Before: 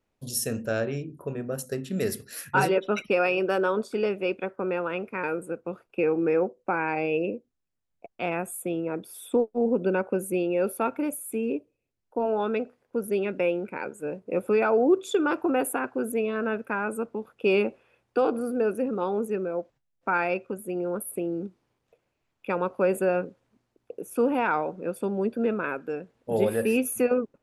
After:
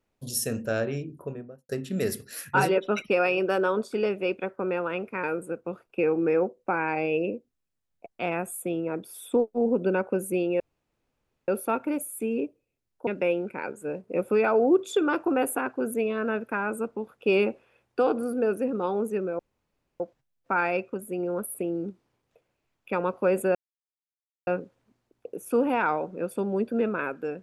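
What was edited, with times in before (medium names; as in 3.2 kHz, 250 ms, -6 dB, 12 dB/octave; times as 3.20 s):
1.11–1.69 s: studio fade out
10.60 s: insert room tone 0.88 s
12.19–13.25 s: delete
19.57 s: insert room tone 0.61 s
23.12 s: insert silence 0.92 s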